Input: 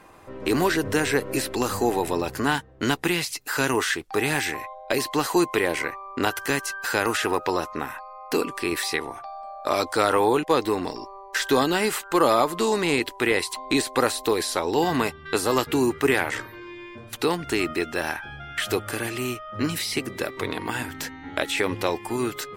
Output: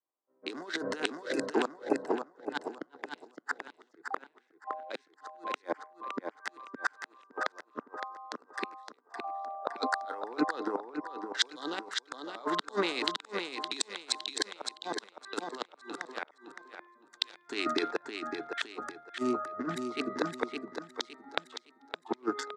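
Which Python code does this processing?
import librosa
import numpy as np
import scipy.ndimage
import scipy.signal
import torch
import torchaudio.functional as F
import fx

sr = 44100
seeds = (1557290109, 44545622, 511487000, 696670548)

p1 = fx.wiener(x, sr, points=15)
p2 = fx.noise_reduce_blind(p1, sr, reduce_db=15)
p3 = fx.dynamic_eq(p2, sr, hz=1500.0, q=1.7, threshold_db=-38.0, ratio=4.0, max_db=5)
p4 = fx.over_compress(p3, sr, threshold_db=-27.0, ratio=-0.5)
p5 = fx.gate_flip(p4, sr, shuts_db=-15.0, range_db=-38)
p6 = fx.cabinet(p5, sr, low_hz=260.0, low_slope=24, high_hz=7500.0, hz=(360.0, 1800.0, 3800.0), db=(-3, -3, 8))
p7 = p6 + fx.echo_feedback(p6, sr, ms=564, feedback_pct=39, wet_db=-3.5, dry=0)
p8 = fx.band_widen(p7, sr, depth_pct=100)
y = F.gain(torch.from_numpy(p8), -2.0).numpy()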